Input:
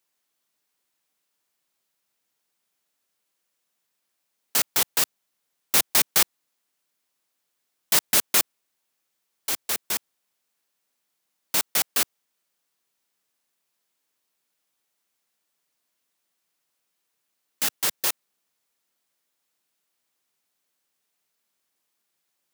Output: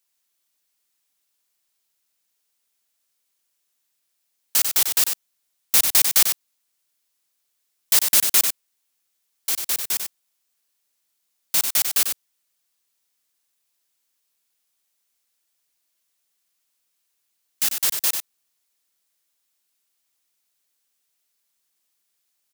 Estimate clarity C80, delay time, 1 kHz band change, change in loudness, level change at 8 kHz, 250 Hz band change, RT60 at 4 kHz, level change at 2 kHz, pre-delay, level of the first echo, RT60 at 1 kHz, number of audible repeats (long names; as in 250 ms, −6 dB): no reverb audible, 95 ms, −3.0 dB, +4.0 dB, +4.0 dB, −4.5 dB, no reverb audible, −0.5 dB, no reverb audible, −6.5 dB, no reverb audible, 1